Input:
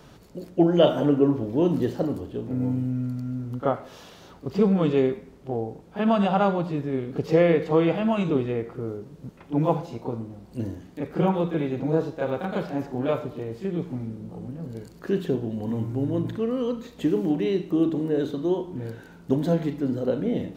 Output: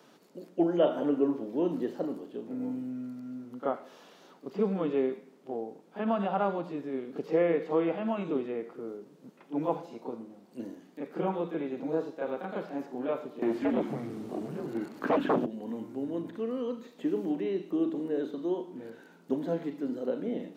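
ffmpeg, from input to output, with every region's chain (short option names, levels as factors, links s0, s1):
-filter_complex "[0:a]asettb=1/sr,asplit=3[s0][s1][s2];[s0]atrim=end=13.424[s3];[s1]atrim=start=13.42:end=15.46,asetpts=PTS-STARTPTS,afade=t=in:d=0.004:c=qsin,afade=t=out:st=2.036:d=0.004:c=qsin,afreqshift=-110,aeval=exprs='0.224*sin(PI/2*3.98*val(0)/0.224)':c=same[s4];[s2]atrim=start=15.456[s5];[s3][s4]acrossfade=d=0.004:c1=hsin:c2=qsin[s6];[s6][s5]acrossfade=d=0.004:c1=qsin:c2=hsin,acrossover=split=2600[s7][s8];[s8]acompressor=threshold=0.00224:ratio=4:attack=1:release=60[s9];[s7][s9]amix=inputs=2:normalize=0,highpass=f=210:w=0.5412,highpass=f=210:w=1.3066,volume=0.473"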